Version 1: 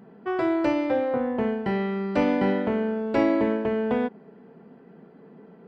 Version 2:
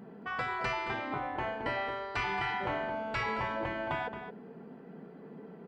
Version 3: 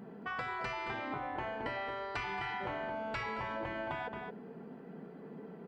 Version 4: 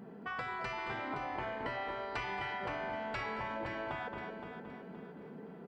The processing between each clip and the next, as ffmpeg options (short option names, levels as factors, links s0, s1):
-filter_complex "[0:a]afftfilt=real='re*lt(hypot(re,im),0.178)':imag='im*lt(hypot(re,im),0.178)':win_size=1024:overlap=0.75,asplit=2[s0][s1];[s1]adelay=221.6,volume=0.355,highshelf=f=4000:g=-4.99[s2];[s0][s2]amix=inputs=2:normalize=0"
-af "acompressor=threshold=0.0178:ratio=6"
-af "aecho=1:1:519|1038|1557|2076:0.355|0.128|0.046|0.0166,volume=0.891"